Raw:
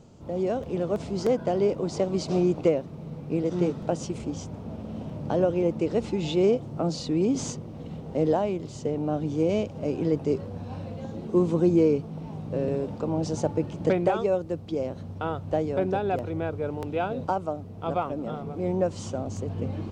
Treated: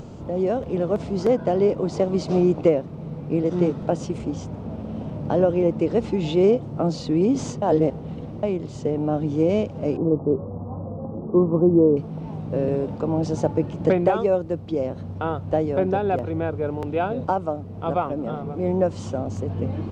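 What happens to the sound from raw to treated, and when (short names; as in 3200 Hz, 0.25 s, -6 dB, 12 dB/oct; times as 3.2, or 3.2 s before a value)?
7.62–8.43 reverse
9.97–11.97 elliptic low-pass 1200 Hz
whole clip: upward compressor, threshold -34 dBFS; high shelf 3800 Hz -9 dB; gain +4.5 dB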